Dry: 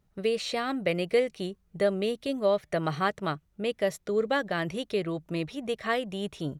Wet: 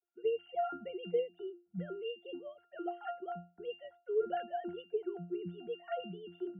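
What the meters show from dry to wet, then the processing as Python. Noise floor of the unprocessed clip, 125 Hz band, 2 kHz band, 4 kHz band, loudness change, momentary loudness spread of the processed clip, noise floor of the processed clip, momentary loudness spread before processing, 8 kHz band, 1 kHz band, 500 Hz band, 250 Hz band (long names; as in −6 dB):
−69 dBFS, −14.0 dB, −18.5 dB, below −15 dB, −10.0 dB, 10 LU, −75 dBFS, 7 LU, below −35 dB, −7.5 dB, −9.0 dB, −12.5 dB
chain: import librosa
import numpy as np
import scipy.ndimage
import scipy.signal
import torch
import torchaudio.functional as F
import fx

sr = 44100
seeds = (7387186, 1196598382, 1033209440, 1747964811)

y = fx.sine_speech(x, sr)
y = fx.octave_resonator(y, sr, note='F', decay_s=0.3)
y = y * librosa.db_to_amplitude(14.0)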